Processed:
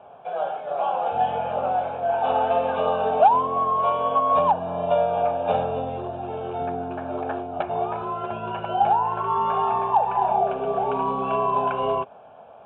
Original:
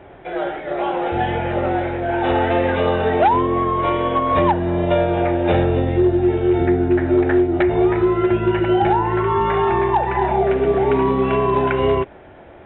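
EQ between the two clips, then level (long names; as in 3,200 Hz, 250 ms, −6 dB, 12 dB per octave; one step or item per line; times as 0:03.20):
loudspeaker in its box 320–2,700 Hz, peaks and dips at 350 Hz −6 dB, 550 Hz −6 dB, 910 Hz −6 dB, 1,400 Hz −5 dB, 2,100 Hz −6 dB
phaser with its sweep stopped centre 800 Hz, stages 4
+4.5 dB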